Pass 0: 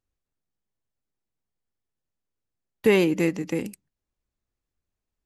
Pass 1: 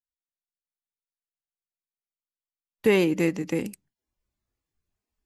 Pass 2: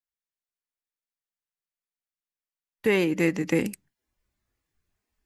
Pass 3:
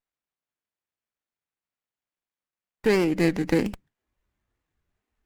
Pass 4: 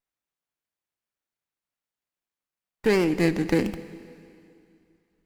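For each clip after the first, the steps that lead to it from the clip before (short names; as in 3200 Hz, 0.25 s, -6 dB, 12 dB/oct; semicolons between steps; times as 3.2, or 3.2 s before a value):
vocal rider 2 s; spectral noise reduction 23 dB
bell 1800 Hz +5 dB 0.83 oct; vocal rider within 4 dB 0.5 s
running maximum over 9 samples; gain +1.5 dB
plate-style reverb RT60 2.5 s, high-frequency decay 1×, DRR 13 dB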